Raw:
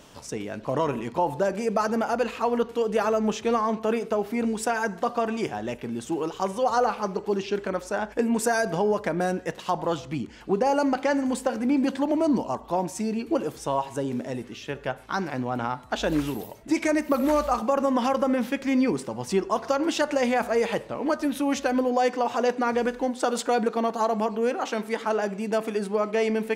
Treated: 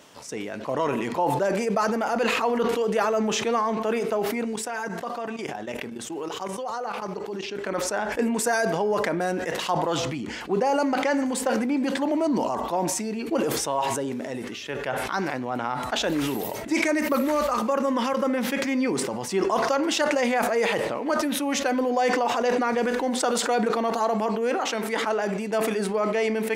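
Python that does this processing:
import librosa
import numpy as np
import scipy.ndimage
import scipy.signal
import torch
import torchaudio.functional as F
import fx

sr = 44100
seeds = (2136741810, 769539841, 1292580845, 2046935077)

y = fx.level_steps(x, sr, step_db=15, at=(4.44, 7.59))
y = fx.peak_eq(y, sr, hz=750.0, db=-10.0, octaves=0.24, at=(16.91, 18.3))
y = fx.highpass(y, sr, hz=260.0, slope=6)
y = fx.peak_eq(y, sr, hz=2000.0, db=3.0, octaves=0.32)
y = fx.sustainer(y, sr, db_per_s=24.0)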